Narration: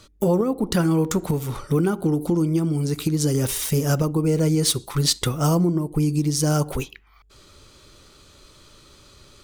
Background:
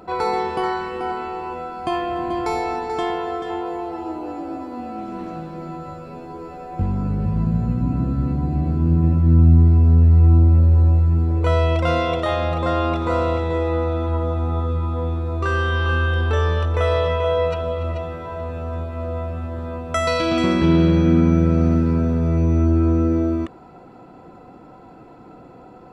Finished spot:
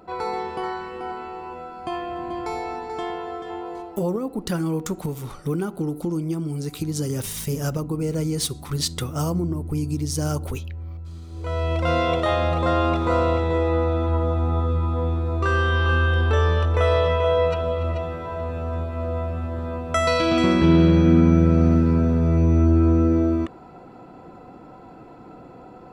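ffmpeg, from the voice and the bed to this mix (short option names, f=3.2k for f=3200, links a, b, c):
-filter_complex "[0:a]adelay=3750,volume=-5dB[a];[1:a]volume=14dB,afade=t=out:st=3.77:d=0.29:silence=0.199526,afade=t=in:st=11.3:d=0.79:silence=0.1[b];[a][b]amix=inputs=2:normalize=0"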